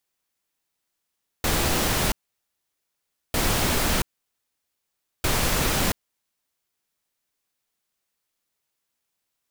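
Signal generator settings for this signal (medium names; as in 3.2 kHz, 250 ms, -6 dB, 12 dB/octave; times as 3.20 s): noise bursts pink, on 0.68 s, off 1.22 s, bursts 3, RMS -22.5 dBFS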